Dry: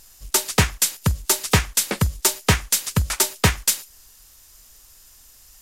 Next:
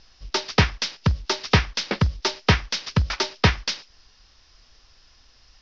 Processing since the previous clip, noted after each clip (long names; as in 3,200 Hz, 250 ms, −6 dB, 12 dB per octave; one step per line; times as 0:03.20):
Butterworth low-pass 5,600 Hz 72 dB per octave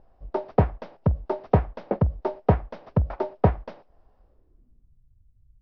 low-pass filter sweep 670 Hz → 120 Hz, 0:04.19–0:05.03
level −1.5 dB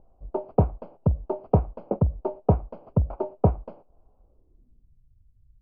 moving average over 24 samples